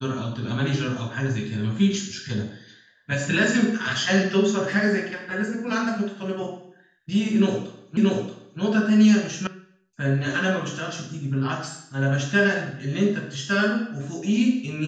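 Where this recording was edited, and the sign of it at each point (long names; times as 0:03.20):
0:07.97: the same again, the last 0.63 s
0:09.47: cut off before it has died away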